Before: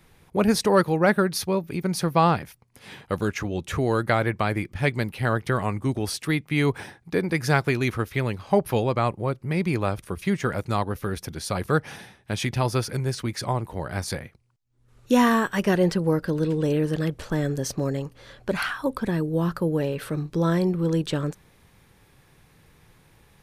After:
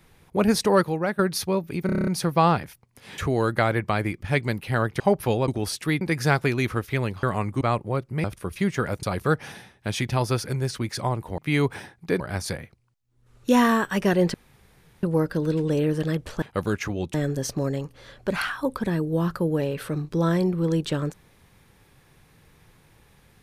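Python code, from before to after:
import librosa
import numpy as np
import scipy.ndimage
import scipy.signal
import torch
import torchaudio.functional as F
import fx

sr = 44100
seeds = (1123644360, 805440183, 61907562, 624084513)

y = fx.edit(x, sr, fx.fade_out_to(start_s=0.74, length_s=0.45, floor_db=-11.5),
    fx.stutter(start_s=1.86, slice_s=0.03, count=8),
    fx.move(start_s=2.97, length_s=0.72, to_s=17.35),
    fx.swap(start_s=5.51, length_s=0.38, other_s=8.46, other_length_s=0.48),
    fx.move(start_s=6.42, length_s=0.82, to_s=13.82),
    fx.cut(start_s=9.57, length_s=0.33),
    fx.cut(start_s=10.69, length_s=0.78),
    fx.insert_room_tone(at_s=15.96, length_s=0.69), tone=tone)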